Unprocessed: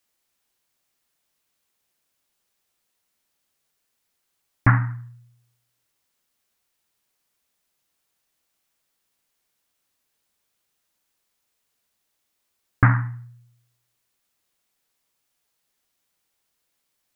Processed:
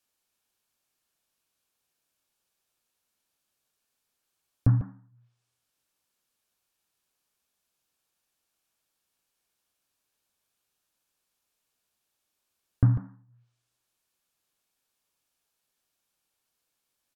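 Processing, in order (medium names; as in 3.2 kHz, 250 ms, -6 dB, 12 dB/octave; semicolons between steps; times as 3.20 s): band-stop 2 kHz, Q 10; low-pass that closes with the level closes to 370 Hz, closed at -28 dBFS; delay 146 ms -11 dB; trim -4 dB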